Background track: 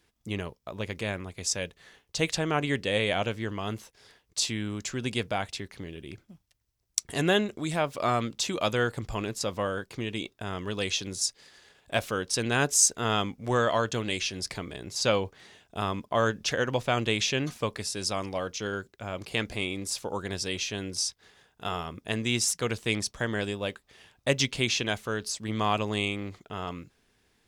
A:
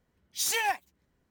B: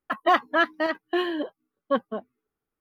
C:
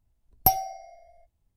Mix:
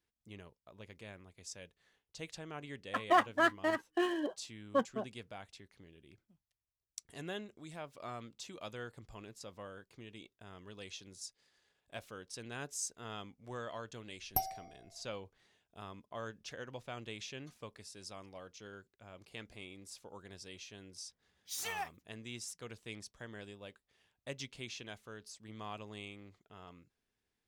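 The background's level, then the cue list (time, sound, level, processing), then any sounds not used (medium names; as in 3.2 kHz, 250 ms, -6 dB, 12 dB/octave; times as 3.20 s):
background track -18.5 dB
2.84 s: add B -7 dB + median filter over 9 samples
13.90 s: add C -13 dB
21.12 s: add A -12 dB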